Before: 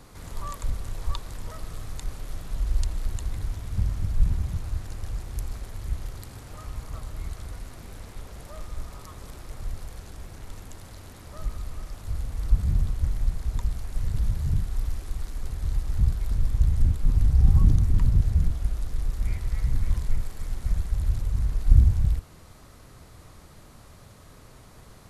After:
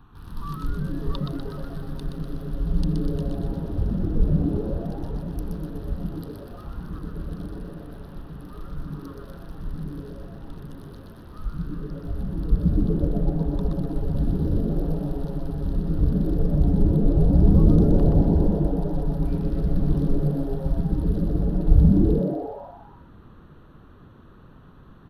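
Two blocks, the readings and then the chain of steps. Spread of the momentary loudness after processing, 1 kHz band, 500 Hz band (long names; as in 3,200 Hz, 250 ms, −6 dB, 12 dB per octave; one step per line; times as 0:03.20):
20 LU, +5.0 dB, +18.0 dB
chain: adaptive Wiener filter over 9 samples
phaser with its sweep stopped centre 2,100 Hz, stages 6
on a send: echo with shifted repeats 123 ms, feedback 54%, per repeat +130 Hz, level −4.5 dB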